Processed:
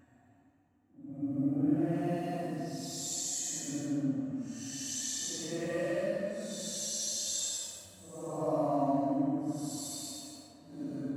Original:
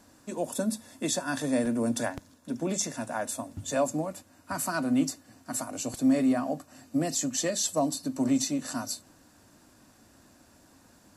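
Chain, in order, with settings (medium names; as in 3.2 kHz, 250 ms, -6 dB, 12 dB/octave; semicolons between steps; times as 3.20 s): local Wiener filter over 9 samples; bass shelf 200 Hz +5.5 dB; expander -44 dBFS; Paulstretch 8.7×, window 0.10 s, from 6.80 s; tape echo 143 ms, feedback 85%, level -11.5 dB, low-pass 3.4 kHz; reverberation RT60 1.3 s, pre-delay 5 ms, DRR 9 dB; trim -7.5 dB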